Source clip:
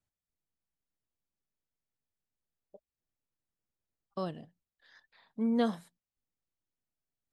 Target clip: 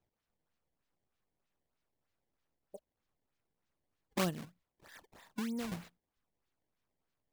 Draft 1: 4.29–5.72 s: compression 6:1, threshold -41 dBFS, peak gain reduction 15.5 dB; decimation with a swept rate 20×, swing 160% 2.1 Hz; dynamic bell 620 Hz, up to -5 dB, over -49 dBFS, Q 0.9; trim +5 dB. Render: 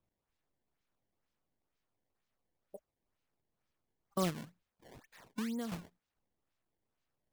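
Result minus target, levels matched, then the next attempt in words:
decimation with a swept rate: distortion -5 dB
4.29–5.72 s: compression 6:1, threshold -41 dBFS, peak gain reduction 15.5 dB; decimation with a swept rate 20×, swing 160% 3.2 Hz; dynamic bell 620 Hz, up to -5 dB, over -49 dBFS, Q 0.9; trim +5 dB

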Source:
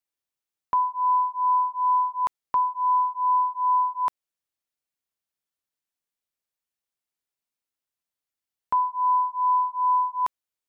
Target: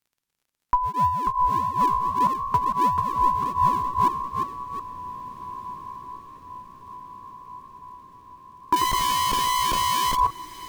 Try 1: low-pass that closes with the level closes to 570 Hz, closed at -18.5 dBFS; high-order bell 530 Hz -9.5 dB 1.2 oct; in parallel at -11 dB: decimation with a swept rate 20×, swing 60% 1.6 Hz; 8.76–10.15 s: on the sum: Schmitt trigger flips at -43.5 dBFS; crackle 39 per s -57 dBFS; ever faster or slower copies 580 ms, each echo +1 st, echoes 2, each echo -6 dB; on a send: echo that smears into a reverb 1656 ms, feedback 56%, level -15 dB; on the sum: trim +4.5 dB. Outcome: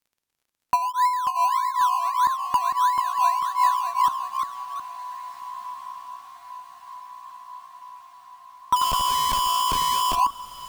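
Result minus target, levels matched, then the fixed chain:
decimation with a swept rate: distortion -18 dB
low-pass that closes with the level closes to 570 Hz, closed at -18.5 dBFS; high-order bell 530 Hz -9.5 dB 1.2 oct; in parallel at -11 dB: decimation with a swept rate 68×, swing 60% 1.6 Hz; 8.76–10.15 s: on the sum: Schmitt trigger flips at -43.5 dBFS; crackle 39 per s -57 dBFS; ever faster or slower copies 580 ms, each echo +1 st, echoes 2, each echo -6 dB; on a send: echo that smears into a reverb 1656 ms, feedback 56%, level -15 dB; on the sum: trim +4.5 dB

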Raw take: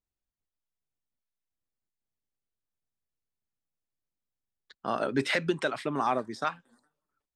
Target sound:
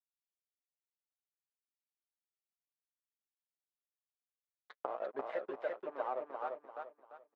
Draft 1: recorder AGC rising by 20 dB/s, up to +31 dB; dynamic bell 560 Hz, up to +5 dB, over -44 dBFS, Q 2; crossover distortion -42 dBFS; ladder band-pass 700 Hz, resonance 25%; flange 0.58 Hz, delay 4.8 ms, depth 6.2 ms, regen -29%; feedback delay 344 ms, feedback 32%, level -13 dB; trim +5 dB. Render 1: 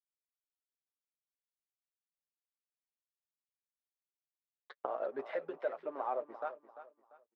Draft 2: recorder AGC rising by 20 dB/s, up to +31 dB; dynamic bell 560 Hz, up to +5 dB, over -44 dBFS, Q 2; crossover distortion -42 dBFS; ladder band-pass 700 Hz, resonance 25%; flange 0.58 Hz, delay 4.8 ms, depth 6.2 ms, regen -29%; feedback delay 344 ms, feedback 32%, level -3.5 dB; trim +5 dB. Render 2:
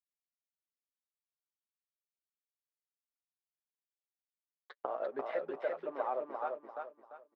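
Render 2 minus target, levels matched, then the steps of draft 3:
crossover distortion: distortion -9 dB
recorder AGC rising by 20 dB/s, up to +31 dB; dynamic bell 560 Hz, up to +5 dB, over -44 dBFS, Q 2; crossover distortion -31 dBFS; ladder band-pass 700 Hz, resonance 25%; flange 0.58 Hz, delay 4.8 ms, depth 6.2 ms, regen -29%; feedback delay 344 ms, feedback 32%, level -3.5 dB; trim +5 dB

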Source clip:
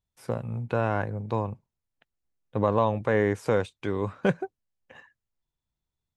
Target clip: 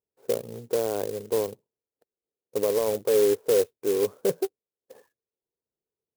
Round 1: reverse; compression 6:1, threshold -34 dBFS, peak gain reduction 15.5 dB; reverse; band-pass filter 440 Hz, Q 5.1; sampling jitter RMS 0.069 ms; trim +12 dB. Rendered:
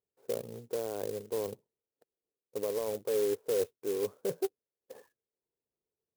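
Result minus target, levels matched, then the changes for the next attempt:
compression: peak gain reduction +9 dB
change: compression 6:1, threshold -23 dBFS, peak gain reduction 6.5 dB

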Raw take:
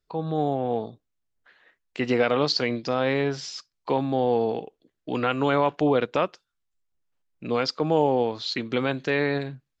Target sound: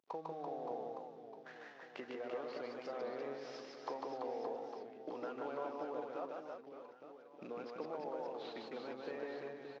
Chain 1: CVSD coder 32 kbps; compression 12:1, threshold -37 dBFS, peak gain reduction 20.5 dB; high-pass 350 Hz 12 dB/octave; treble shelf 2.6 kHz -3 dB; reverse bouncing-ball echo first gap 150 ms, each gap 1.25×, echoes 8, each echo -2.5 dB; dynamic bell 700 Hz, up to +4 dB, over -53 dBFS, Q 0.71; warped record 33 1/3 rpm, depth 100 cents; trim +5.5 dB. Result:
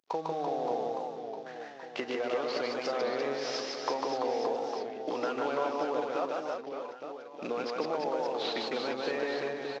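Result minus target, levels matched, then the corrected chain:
compression: peak gain reduction -10 dB; 4 kHz band +6.5 dB
CVSD coder 32 kbps; compression 12:1, threshold -48 dBFS, peak gain reduction 31 dB; high-pass 350 Hz 12 dB/octave; treble shelf 2.6 kHz -15 dB; reverse bouncing-ball echo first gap 150 ms, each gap 1.25×, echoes 8, each echo -2.5 dB; dynamic bell 700 Hz, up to +4 dB, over -53 dBFS, Q 0.71; warped record 33 1/3 rpm, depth 100 cents; trim +5.5 dB

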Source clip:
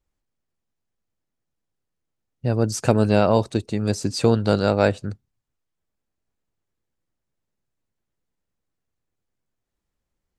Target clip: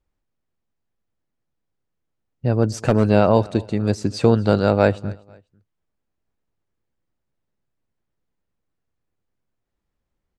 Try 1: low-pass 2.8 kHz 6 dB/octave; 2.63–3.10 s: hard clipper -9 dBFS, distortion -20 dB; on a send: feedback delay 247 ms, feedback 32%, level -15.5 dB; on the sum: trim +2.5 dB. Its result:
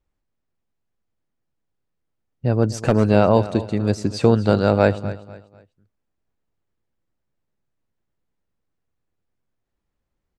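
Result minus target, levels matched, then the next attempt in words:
echo-to-direct +7 dB
low-pass 2.8 kHz 6 dB/octave; 2.63–3.10 s: hard clipper -9 dBFS, distortion -20 dB; on a send: feedback delay 247 ms, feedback 32%, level -22.5 dB; on the sum: trim +2.5 dB

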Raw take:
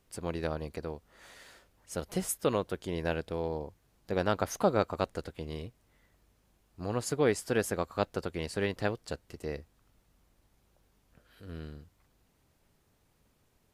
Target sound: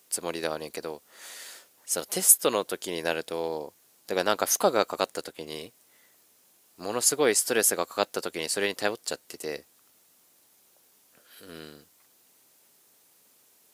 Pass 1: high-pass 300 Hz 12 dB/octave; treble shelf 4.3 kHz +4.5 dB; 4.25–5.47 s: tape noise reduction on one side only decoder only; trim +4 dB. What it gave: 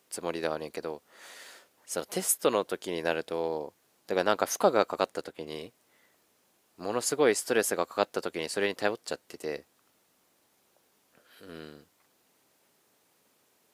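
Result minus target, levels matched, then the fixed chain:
8 kHz band -5.5 dB
high-pass 300 Hz 12 dB/octave; treble shelf 4.3 kHz +16 dB; 4.25–5.47 s: tape noise reduction on one side only decoder only; trim +4 dB

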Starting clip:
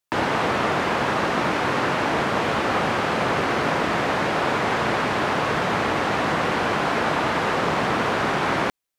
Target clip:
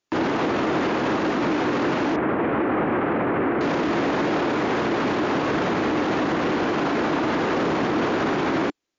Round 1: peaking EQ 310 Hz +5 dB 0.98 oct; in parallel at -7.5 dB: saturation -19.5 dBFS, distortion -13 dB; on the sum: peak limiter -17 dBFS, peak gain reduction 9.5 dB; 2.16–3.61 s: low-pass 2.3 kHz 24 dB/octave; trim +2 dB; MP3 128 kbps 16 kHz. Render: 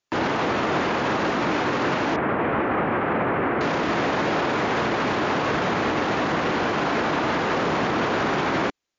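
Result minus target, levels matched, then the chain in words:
250 Hz band -3.0 dB
peaking EQ 310 Hz +12.5 dB 0.98 oct; in parallel at -7.5 dB: saturation -19.5 dBFS, distortion -10 dB; on the sum: peak limiter -17 dBFS, peak gain reduction 11.5 dB; 2.16–3.61 s: low-pass 2.3 kHz 24 dB/octave; trim +2 dB; MP3 128 kbps 16 kHz

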